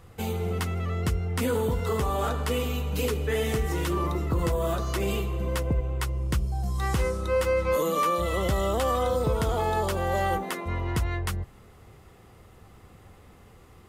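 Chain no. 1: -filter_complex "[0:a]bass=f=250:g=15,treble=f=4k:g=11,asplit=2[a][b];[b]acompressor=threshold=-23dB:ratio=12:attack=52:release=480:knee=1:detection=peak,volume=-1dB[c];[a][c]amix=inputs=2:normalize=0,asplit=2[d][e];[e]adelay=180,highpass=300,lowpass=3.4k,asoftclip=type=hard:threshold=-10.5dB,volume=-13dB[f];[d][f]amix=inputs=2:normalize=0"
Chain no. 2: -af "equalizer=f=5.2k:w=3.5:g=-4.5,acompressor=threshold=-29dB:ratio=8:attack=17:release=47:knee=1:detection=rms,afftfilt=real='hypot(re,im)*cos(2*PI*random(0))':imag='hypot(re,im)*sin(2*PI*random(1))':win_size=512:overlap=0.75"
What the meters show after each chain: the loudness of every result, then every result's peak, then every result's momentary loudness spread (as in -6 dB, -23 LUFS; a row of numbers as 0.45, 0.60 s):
-15.0, -38.0 LUFS; -1.5, -23.5 dBFS; 5, 2 LU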